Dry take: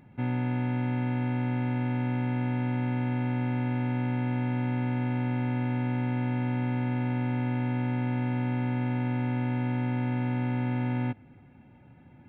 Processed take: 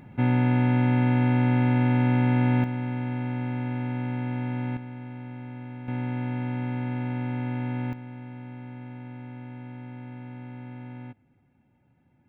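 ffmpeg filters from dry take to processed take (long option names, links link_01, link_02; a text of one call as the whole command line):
ffmpeg -i in.wav -af "asetnsamples=nb_out_samples=441:pad=0,asendcmd='2.64 volume volume -1dB;4.77 volume volume -10dB;5.88 volume volume -1dB;7.93 volume volume -11.5dB',volume=7dB" out.wav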